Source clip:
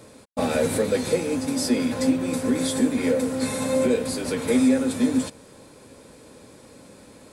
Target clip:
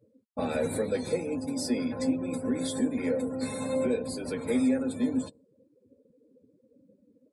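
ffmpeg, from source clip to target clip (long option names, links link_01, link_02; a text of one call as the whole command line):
ffmpeg -i in.wav -af "afftdn=noise_reduction=35:noise_floor=-36,volume=-6.5dB" out.wav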